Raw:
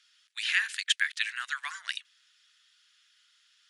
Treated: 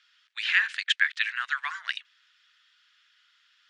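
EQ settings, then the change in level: band-pass 690–5400 Hz; treble shelf 3 kHz -12 dB; +8.0 dB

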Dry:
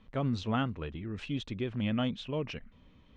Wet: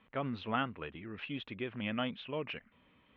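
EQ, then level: high-pass 230 Hz 6 dB/octave; low-pass 2.9 kHz 24 dB/octave; tilt shelf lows -4 dB, about 900 Hz; 0.0 dB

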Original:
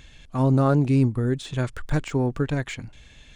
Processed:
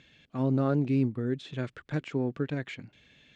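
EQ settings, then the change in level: band-pass 160–3600 Hz; peaking EQ 950 Hz -7.5 dB 1.2 oct; -4.0 dB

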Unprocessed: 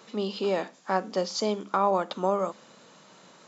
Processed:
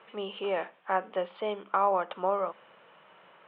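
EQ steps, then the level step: steep low-pass 3.2 kHz 72 dB/octave; bass shelf 170 Hz -12 dB; peaking EQ 250 Hz -11 dB 0.86 oct; 0.0 dB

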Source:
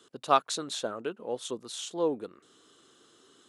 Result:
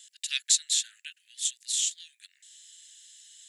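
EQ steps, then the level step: steep high-pass 1.7 kHz 96 dB/octave; treble shelf 2.5 kHz +9 dB; peaking EQ 7.4 kHz +8.5 dB 0.28 oct; +1.5 dB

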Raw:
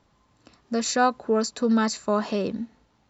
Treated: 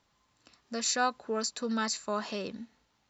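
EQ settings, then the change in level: tilt shelf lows -5.5 dB, about 1.1 kHz; -6.5 dB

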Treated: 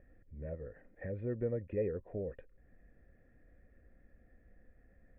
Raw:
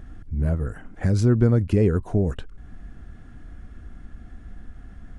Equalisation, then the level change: cascade formant filter e; -2.5 dB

